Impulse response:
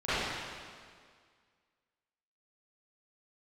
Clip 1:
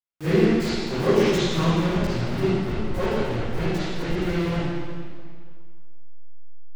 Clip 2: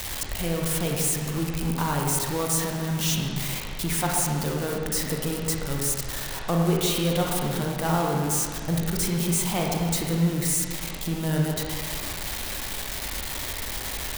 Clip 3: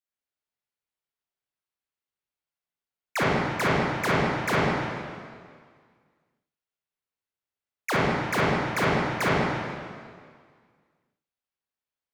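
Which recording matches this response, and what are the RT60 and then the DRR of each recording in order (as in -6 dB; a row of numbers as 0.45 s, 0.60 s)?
1; 2.0 s, 1.9 s, 1.9 s; -18.0 dB, -1.0 dB, -8.5 dB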